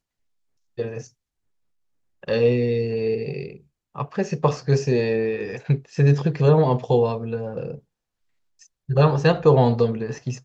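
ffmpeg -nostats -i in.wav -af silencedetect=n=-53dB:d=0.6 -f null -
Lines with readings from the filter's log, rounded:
silence_start: 0.00
silence_end: 0.77 | silence_duration: 0.77
silence_start: 1.10
silence_end: 2.23 | silence_duration: 1.13
silence_start: 7.80
silence_end: 8.59 | silence_duration: 0.79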